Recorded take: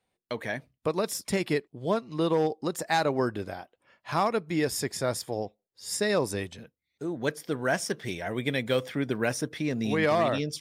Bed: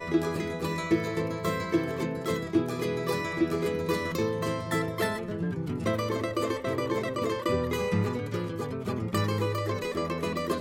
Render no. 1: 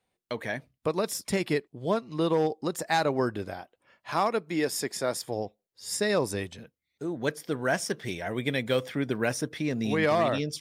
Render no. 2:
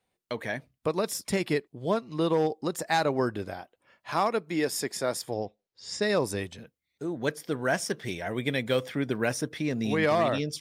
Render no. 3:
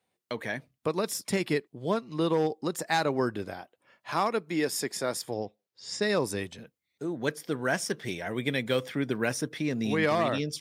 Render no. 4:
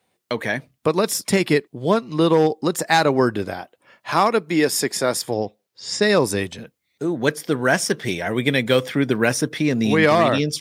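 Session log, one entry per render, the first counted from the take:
4.1–5.24 HPF 200 Hz
5.34–6.02 LPF 6400 Hz 24 dB/oct
HPF 100 Hz; dynamic EQ 650 Hz, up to -3 dB, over -39 dBFS, Q 2
gain +10 dB

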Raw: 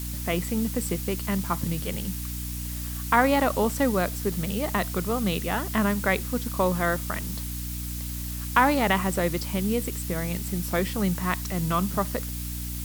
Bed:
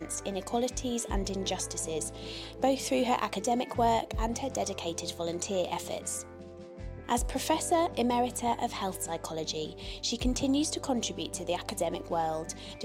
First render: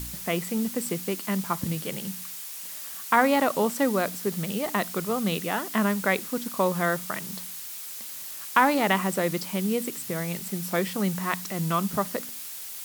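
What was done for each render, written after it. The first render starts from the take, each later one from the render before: de-hum 60 Hz, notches 5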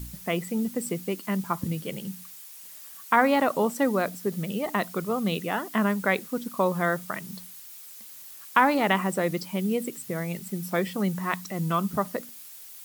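denoiser 9 dB, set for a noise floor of -38 dBFS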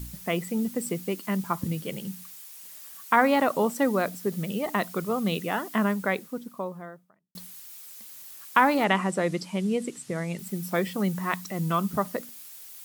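5.63–7.35 studio fade out; 8.84–10.39 LPF 9500 Hz 24 dB/oct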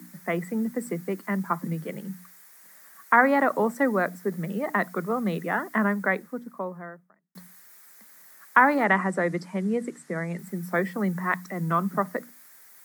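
steep high-pass 150 Hz 96 dB/oct; resonant high shelf 2300 Hz -7 dB, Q 3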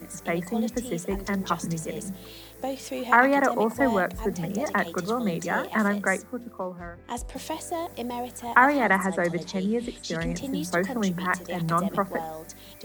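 add bed -4.5 dB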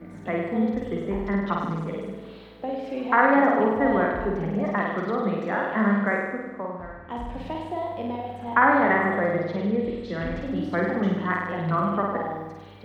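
air absorption 400 m; on a send: flutter echo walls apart 8.6 m, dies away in 1.1 s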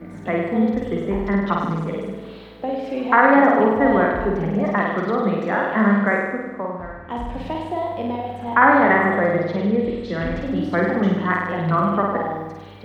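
gain +5 dB; limiter -2 dBFS, peak gain reduction 2 dB

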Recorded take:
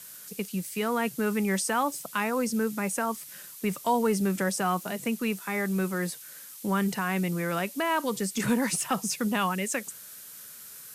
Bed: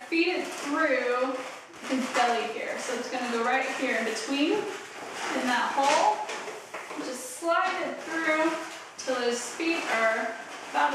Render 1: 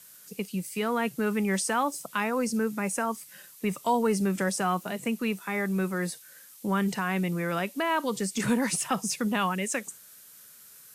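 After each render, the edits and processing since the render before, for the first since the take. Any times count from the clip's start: noise print and reduce 6 dB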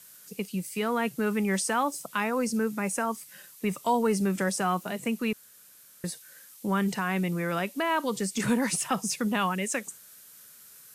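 5.33–6.04 room tone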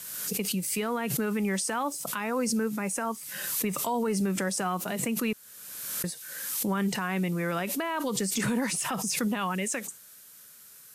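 limiter -20.5 dBFS, peak gain reduction 7 dB; backwards sustainer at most 36 dB/s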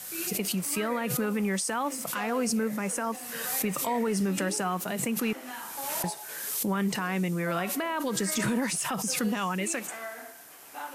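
add bed -14.5 dB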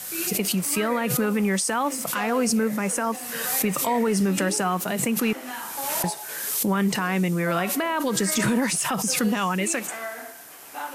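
gain +5.5 dB

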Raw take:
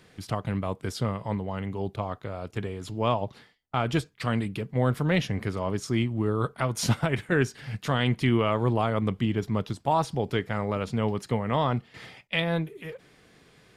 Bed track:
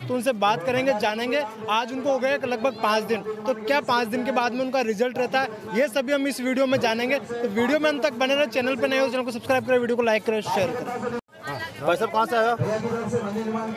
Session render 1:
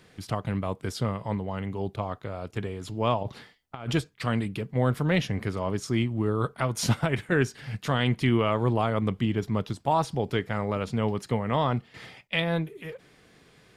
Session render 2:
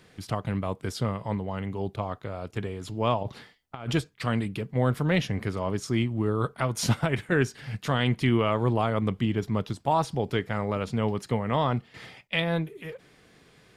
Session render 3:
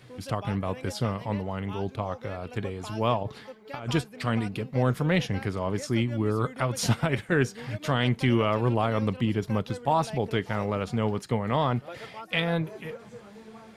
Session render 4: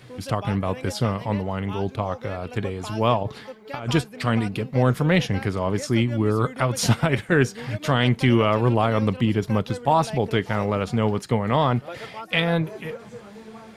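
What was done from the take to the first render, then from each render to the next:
3.23–3.93 negative-ratio compressor -32 dBFS, ratio -0.5
nothing audible
add bed track -20 dB
gain +5 dB

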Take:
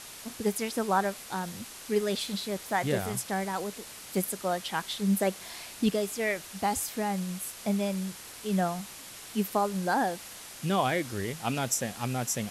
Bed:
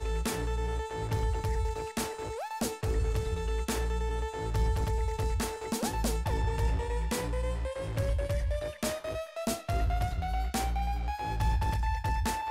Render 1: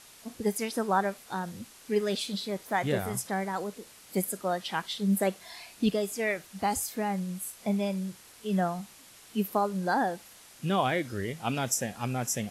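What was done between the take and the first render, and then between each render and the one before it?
noise print and reduce 8 dB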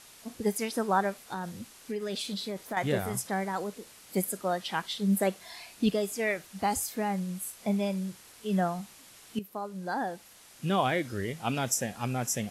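1.24–2.77 compressor, threshold -30 dBFS; 9.39–10.71 fade in, from -14 dB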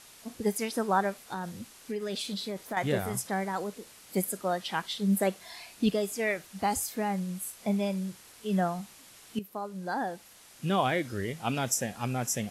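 nothing audible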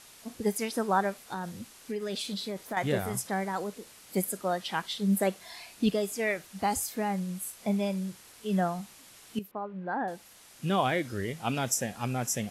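9.51–10.08 LPF 2600 Hz 24 dB/oct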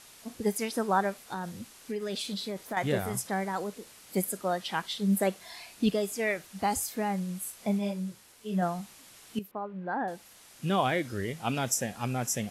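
7.78–8.61 detuned doubles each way 22 cents -> 37 cents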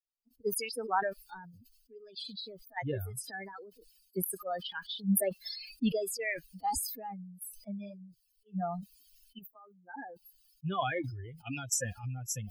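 per-bin expansion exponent 3; sustainer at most 49 dB/s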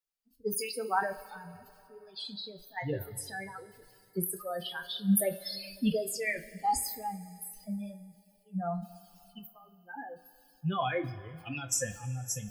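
two-slope reverb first 0.21 s, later 2.9 s, from -22 dB, DRR 4 dB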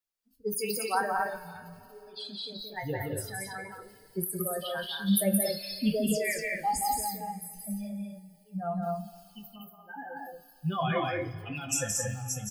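doubler 19 ms -13 dB; loudspeakers at several distances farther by 59 m -4 dB, 79 m -3 dB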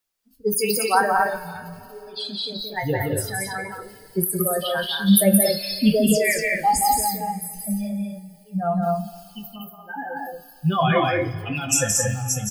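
gain +10 dB

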